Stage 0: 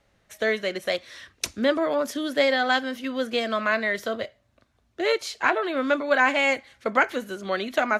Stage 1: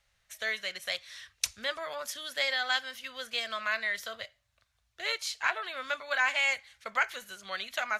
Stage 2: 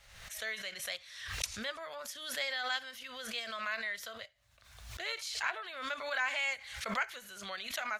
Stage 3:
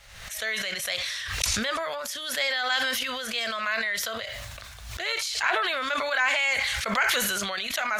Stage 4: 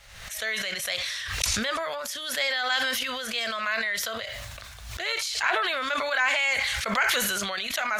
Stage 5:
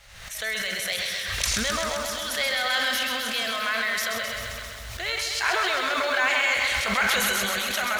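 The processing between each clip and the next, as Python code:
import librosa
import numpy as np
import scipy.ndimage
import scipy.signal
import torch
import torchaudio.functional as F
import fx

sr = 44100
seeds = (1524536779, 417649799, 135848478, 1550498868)

y1 = fx.tone_stack(x, sr, knobs='10-0-10')
y2 = fx.pre_swell(y1, sr, db_per_s=56.0)
y2 = F.gain(torch.from_numpy(y2), -6.5).numpy()
y3 = fx.sustainer(y2, sr, db_per_s=20.0)
y3 = F.gain(torch.from_numpy(y3), 8.5).numpy()
y4 = y3
y5 = fx.echo_crushed(y4, sr, ms=131, feedback_pct=80, bits=8, wet_db=-5.5)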